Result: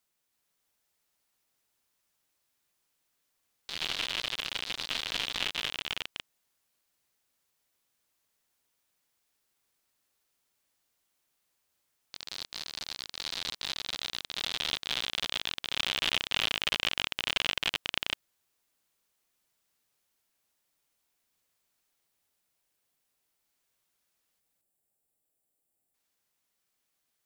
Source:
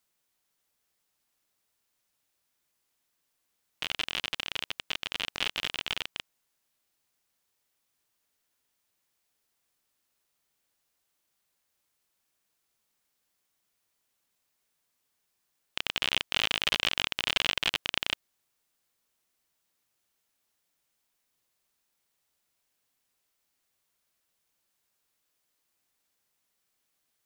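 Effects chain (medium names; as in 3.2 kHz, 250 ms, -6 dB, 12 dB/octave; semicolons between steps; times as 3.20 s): time-frequency box 24.40–25.94 s, 860–7100 Hz -11 dB; ever faster or slower copies 329 ms, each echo +2 st, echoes 3; trim -2 dB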